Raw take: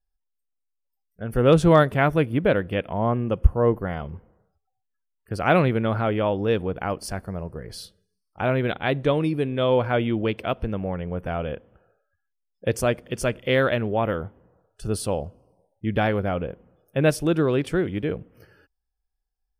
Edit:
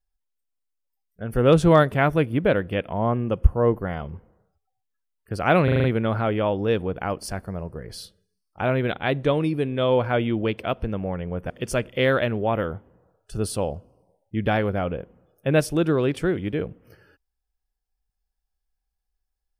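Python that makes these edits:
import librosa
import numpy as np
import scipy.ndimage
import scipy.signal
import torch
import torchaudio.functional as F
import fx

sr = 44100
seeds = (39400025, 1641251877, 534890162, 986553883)

y = fx.edit(x, sr, fx.stutter(start_s=5.64, slice_s=0.04, count=6),
    fx.cut(start_s=11.3, length_s=1.7), tone=tone)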